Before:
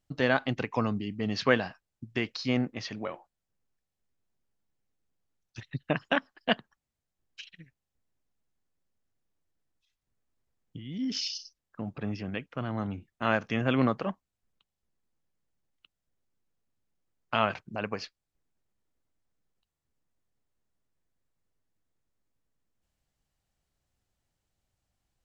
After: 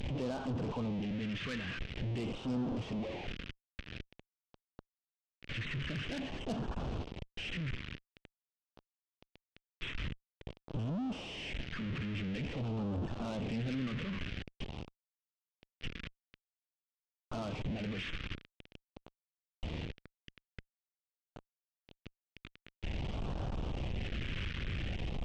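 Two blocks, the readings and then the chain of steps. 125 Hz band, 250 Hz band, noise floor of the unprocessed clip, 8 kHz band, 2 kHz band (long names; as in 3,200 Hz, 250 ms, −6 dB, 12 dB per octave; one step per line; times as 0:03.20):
−0.5 dB, −4.5 dB, below −85 dBFS, can't be measured, −9.0 dB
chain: linear delta modulator 16 kbit/s, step −23.5 dBFS
tube saturation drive 25 dB, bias 0.35
all-pass phaser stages 2, 0.48 Hz, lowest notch 760–2,000 Hz
level −4 dB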